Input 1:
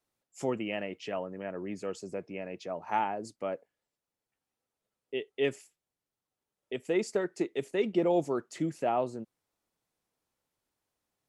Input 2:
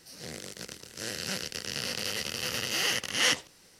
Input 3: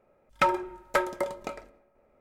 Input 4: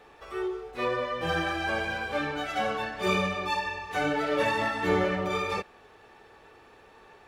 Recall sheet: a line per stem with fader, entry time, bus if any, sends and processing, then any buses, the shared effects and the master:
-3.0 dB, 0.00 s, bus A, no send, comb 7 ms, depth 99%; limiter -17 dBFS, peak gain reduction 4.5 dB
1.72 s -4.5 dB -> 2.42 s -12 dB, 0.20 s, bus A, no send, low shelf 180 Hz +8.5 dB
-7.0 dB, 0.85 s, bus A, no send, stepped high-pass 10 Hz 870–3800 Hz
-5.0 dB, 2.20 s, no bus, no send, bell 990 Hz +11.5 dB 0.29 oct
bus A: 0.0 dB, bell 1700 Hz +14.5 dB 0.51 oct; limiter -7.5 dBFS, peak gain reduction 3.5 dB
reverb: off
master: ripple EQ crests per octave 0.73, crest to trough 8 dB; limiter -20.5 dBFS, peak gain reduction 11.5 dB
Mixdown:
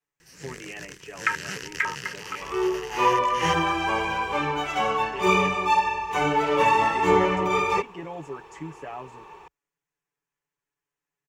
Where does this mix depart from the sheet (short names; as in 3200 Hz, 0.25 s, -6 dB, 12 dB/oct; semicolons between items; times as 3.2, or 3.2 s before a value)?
stem 1 -3.0 dB -> -10.5 dB; stem 4 -5.0 dB -> +3.0 dB; master: missing limiter -20.5 dBFS, peak gain reduction 11.5 dB